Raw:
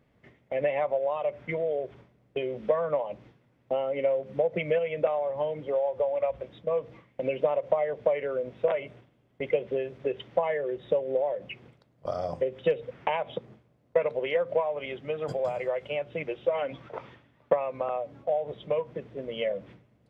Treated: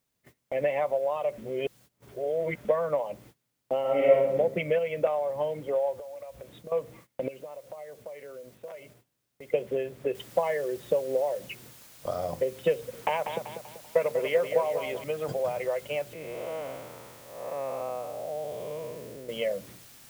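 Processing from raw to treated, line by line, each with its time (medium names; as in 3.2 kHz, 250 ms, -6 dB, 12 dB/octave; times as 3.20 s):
1.38–2.65 s: reverse
3.81–4.36 s: reverb throw, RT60 0.83 s, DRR -5.5 dB
5.99–6.72 s: compression 16:1, threshold -38 dBFS
7.28–9.54 s: compression 2:1, threshold -52 dBFS
10.15 s: noise floor step -62 dB -52 dB
12.74–15.04 s: feedback delay 193 ms, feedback 45%, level -8 dB
16.13–19.29 s: spectral blur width 323 ms
whole clip: gate -52 dBFS, range -19 dB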